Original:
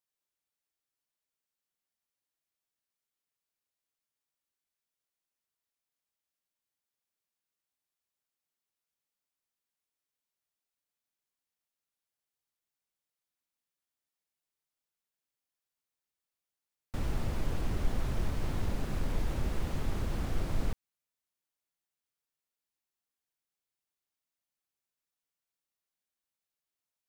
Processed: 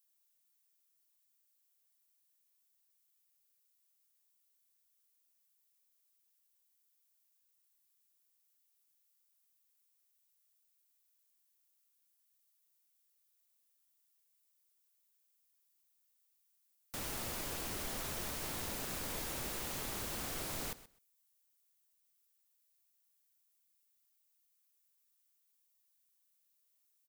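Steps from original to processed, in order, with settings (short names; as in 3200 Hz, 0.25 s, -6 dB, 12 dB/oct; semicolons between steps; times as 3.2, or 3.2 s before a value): RIAA curve recording; feedback echo 0.128 s, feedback 16%, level -17 dB; gain -1.5 dB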